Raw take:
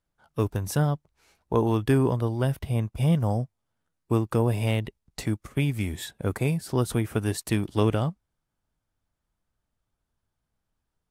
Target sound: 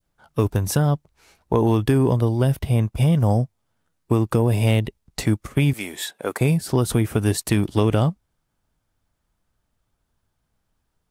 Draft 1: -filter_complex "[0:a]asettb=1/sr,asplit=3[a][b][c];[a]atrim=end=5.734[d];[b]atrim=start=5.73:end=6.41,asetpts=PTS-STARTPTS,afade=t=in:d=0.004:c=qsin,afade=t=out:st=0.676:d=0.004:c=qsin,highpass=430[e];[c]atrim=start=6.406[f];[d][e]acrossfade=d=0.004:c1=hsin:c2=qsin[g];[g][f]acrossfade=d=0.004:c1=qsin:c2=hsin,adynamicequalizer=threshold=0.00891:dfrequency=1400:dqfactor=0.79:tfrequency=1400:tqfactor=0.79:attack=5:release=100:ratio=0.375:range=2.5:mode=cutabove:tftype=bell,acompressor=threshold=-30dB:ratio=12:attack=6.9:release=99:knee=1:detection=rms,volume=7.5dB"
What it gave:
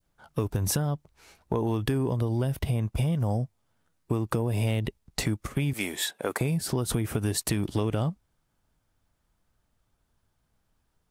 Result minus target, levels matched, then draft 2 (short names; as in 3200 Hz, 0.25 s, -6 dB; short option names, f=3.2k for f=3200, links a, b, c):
compressor: peak gain reduction +9 dB
-filter_complex "[0:a]asettb=1/sr,asplit=3[a][b][c];[a]atrim=end=5.734[d];[b]atrim=start=5.73:end=6.41,asetpts=PTS-STARTPTS,afade=t=in:d=0.004:c=qsin,afade=t=out:st=0.676:d=0.004:c=qsin,highpass=430[e];[c]atrim=start=6.406[f];[d][e]acrossfade=d=0.004:c1=hsin:c2=qsin[g];[g][f]acrossfade=d=0.004:c1=qsin:c2=hsin,adynamicequalizer=threshold=0.00891:dfrequency=1400:dqfactor=0.79:tfrequency=1400:tqfactor=0.79:attack=5:release=100:ratio=0.375:range=2.5:mode=cutabove:tftype=bell,acompressor=threshold=-20dB:ratio=12:attack=6.9:release=99:knee=1:detection=rms,volume=7.5dB"